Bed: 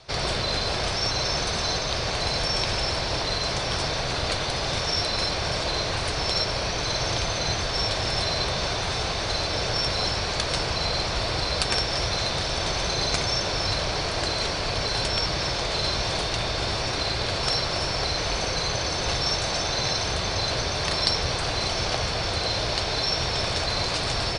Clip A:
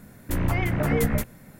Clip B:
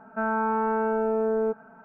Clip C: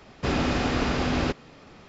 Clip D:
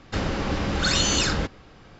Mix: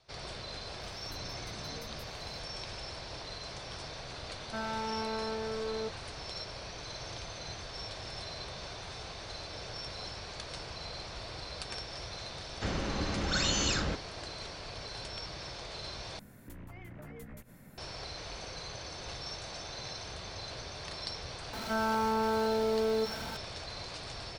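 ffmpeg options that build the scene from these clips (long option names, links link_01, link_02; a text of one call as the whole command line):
ffmpeg -i bed.wav -i cue0.wav -i cue1.wav -i cue2.wav -i cue3.wav -filter_complex "[1:a]asplit=2[link_01][link_02];[2:a]asplit=2[link_03][link_04];[0:a]volume=-16.5dB[link_05];[link_01]acompressor=threshold=-30dB:ratio=6:attack=3.2:release=140:knee=1:detection=peak[link_06];[link_03]volume=24.5dB,asoftclip=hard,volume=-24.5dB[link_07];[link_02]acompressor=threshold=-39dB:ratio=6:attack=3.2:release=140:knee=1:detection=peak[link_08];[link_04]aeval=exprs='val(0)+0.5*0.0282*sgn(val(0))':channel_layout=same[link_09];[link_05]asplit=2[link_10][link_11];[link_10]atrim=end=16.194[link_12];[link_08]atrim=end=1.59,asetpts=PTS-STARTPTS,volume=-6.5dB[link_13];[link_11]atrim=start=17.776[link_14];[link_06]atrim=end=1.59,asetpts=PTS-STARTPTS,volume=-14.5dB,afade=type=in:duration=0.004:curve=hsin,afade=type=out:start_time=1.586:duration=0.004:curve=hsin,adelay=810[link_15];[link_07]atrim=end=1.84,asetpts=PTS-STARTPTS,volume=-9dB,afade=type=in:duration=0.004:curve=hsin,afade=type=out:start_time=1.836:duration=0.004:curve=hsin,adelay=4360[link_16];[4:a]atrim=end=1.99,asetpts=PTS-STARTPTS,volume=-8dB,afade=type=in:duration=0.004:curve=hsin,afade=type=out:start_time=1.986:duration=0.004:curve=hsin,adelay=12490[link_17];[link_09]atrim=end=1.84,asetpts=PTS-STARTPTS,volume=-6.5dB,afade=type=in:duration=0.004:curve=hsin,afade=type=out:start_time=1.836:duration=0.004:curve=hsin,adelay=21530[link_18];[link_12][link_13]acrossfade=duration=0.004:curve1=hsin:curve2=hsin[link_19];[link_19][link_14]acrossfade=duration=0.004:curve1=hsin:curve2=hsin[link_20];[link_20][link_15][link_16][link_17][link_18]amix=inputs=5:normalize=0" out.wav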